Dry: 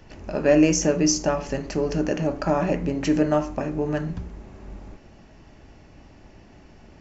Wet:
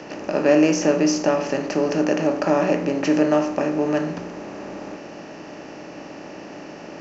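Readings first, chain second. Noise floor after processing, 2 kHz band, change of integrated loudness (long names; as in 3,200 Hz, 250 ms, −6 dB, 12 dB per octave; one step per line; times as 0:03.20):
−38 dBFS, +4.0 dB, +2.5 dB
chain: compressor on every frequency bin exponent 0.6
three-way crossover with the lows and the highs turned down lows −24 dB, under 160 Hz, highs −19 dB, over 5,600 Hz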